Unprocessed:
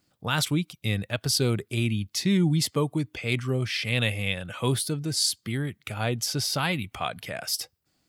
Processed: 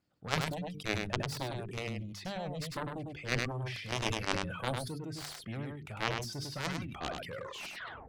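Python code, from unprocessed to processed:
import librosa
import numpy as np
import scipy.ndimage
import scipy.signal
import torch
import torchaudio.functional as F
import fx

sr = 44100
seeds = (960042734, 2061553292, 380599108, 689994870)

p1 = fx.tape_stop_end(x, sr, length_s=0.87)
p2 = fx.rider(p1, sr, range_db=5, speed_s=0.5)
p3 = p1 + (p2 * librosa.db_to_amplitude(-2.0))
p4 = fx.cheby_harmonics(p3, sr, harmonics=(3, 7), levels_db=(-8, -43), full_scale_db=-4.0)
p5 = fx.high_shelf(p4, sr, hz=3000.0, db=-10.0)
p6 = fx.dereverb_blind(p5, sr, rt60_s=0.73)
p7 = fx.high_shelf(p6, sr, hz=8600.0, db=-5.5)
p8 = fx.hum_notches(p7, sr, base_hz=50, count=9)
p9 = p8 + fx.echo_single(p8, sr, ms=101, db=-5.5, dry=0)
y = fx.sustainer(p9, sr, db_per_s=45.0)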